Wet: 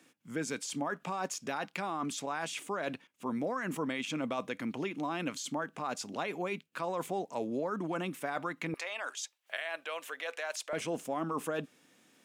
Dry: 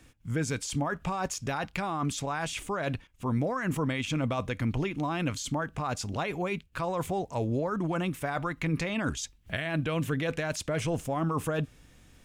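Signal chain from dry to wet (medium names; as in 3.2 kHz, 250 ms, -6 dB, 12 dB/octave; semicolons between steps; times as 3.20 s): high-pass 200 Hz 24 dB/octave, from 8.74 s 570 Hz, from 10.73 s 210 Hz; trim -3.5 dB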